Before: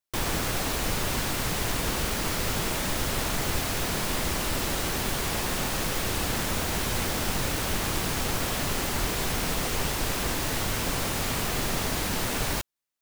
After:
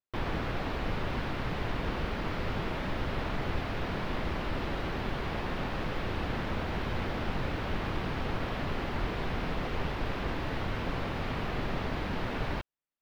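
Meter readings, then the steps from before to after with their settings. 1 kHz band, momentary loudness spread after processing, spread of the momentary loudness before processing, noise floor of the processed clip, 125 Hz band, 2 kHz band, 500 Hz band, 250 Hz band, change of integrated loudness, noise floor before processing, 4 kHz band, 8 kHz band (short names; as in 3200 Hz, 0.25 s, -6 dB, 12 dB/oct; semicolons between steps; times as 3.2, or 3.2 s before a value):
-4.0 dB, 1 LU, 0 LU, -36 dBFS, -2.5 dB, -6.0 dB, -3.5 dB, -3.0 dB, -7.0 dB, -30 dBFS, -11.5 dB, -28.0 dB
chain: air absorption 350 m; gain -2.5 dB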